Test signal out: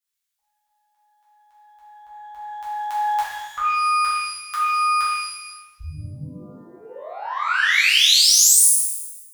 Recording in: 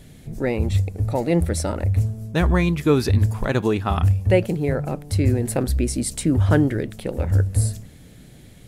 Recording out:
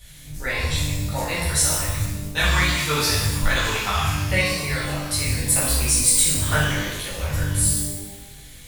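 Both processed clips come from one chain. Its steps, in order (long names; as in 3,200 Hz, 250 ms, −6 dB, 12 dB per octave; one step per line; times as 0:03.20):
guitar amp tone stack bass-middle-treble 10-0-10
harmonic and percussive parts rebalanced percussive +6 dB
reverb with rising layers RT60 1 s, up +12 semitones, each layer −8 dB, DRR −9 dB
level −2 dB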